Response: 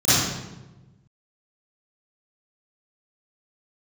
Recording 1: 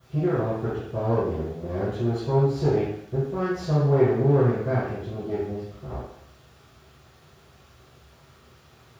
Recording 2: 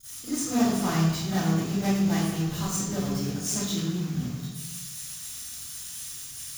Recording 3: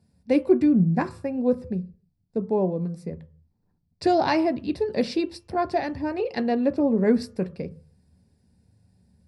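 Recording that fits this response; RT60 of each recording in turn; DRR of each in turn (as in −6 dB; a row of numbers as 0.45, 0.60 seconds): 2; 0.65, 1.1, 0.45 seconds; −19.0, −18.5, 9.5 decibels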